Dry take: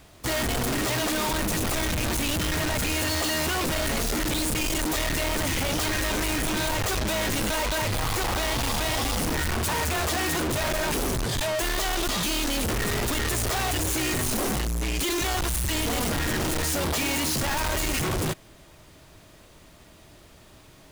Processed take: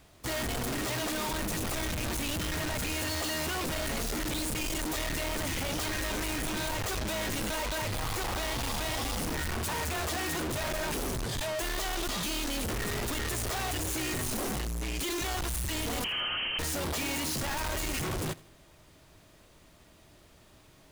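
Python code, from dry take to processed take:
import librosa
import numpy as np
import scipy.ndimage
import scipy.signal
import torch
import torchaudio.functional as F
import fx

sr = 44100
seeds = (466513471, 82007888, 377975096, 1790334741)

p1 = fx.freq_invert(x, sr, carrier_hz=3100, at=(16.04, 16.59))
p2 = p1 + fx.echo_feedback(p1, sr, ms=82, feedback_pct=37, wet_db=-21.0, dry=0)
y = p2 * 10.0 ** (-6.5 / 20.0)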